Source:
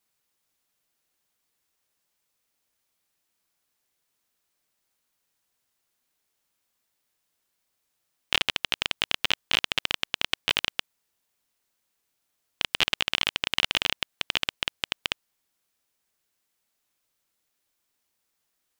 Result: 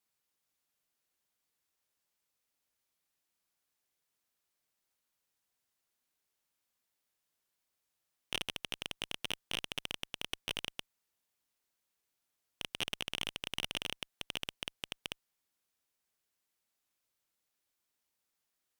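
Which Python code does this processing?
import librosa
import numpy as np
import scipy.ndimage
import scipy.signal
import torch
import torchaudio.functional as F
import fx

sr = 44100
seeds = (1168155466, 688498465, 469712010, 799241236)

y = fx.tube_stage(x, sr, drive_db=19.0, bias=0.6)
y = F.gain(torch.from_numpy(y), -4.0).numpy()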